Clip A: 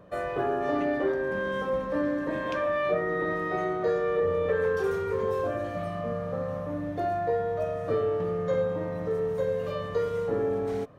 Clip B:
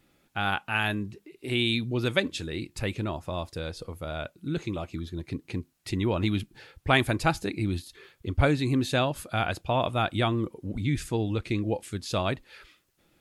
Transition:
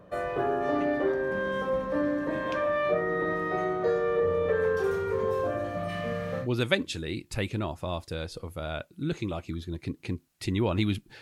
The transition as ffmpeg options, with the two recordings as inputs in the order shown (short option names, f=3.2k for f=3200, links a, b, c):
-filter_complex "[0:a]asplit=3[a][b][c];[a]afade=t=out:st=5.88:d=0.02[d];[b]highshelf=f=1.5k:t=q:w=1.5:g=9,afade=t=in:st=5.88:d=0.02,afade=t=out:st=6.48:d=0.02[e];[c]afade=t=in:st=6.48:d=0.02[f];[d][e][f]amix=inputs=3:normalize=0,apad=whole_dur=11.21,atrim=end=11.21,atrim=end=6.48,asetpts=PTS-STARTPTS[g];[1:a]atrim=start=1.83:end=6.66,asetpts=PTS-STARTPTS[h];[g][h]acrossfade=d=0.1:c1=tri:c2=tri"